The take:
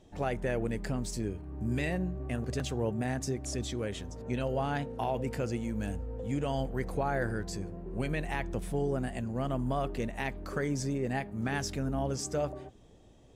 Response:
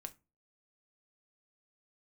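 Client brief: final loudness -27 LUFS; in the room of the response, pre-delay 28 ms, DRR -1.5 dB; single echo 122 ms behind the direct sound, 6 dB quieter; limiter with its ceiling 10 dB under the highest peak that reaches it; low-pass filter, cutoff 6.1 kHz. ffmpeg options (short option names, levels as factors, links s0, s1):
-filter_complex "[0:a]lowpass=6100,alimiter=level_in=1.78:limit=0.0631:level=0:latency=1,volume=0.562,aecho=1:1:122:0.501,asplit=2[s0][s1];[1:a]atrim=start_sample=2205,adelay=28[s2];[s1][s2]afir=irnorm=-1:irlink=0,volume=2[s3];[s0][s3]amix=inputs=2:normalize=0,volume=2.11"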